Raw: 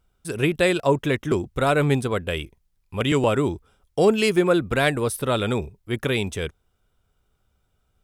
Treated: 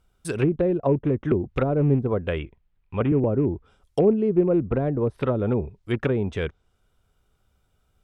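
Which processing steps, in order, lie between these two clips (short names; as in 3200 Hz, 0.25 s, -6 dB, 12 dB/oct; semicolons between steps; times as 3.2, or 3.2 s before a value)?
rattling part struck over -25 dBFS, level -16 dBFS; treble ducked by the level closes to 430 Hz, closed at -17.5 dBFS; 2.39–3.46 LPF 3100 Hz 24 dB/oct; gain +1.5 dB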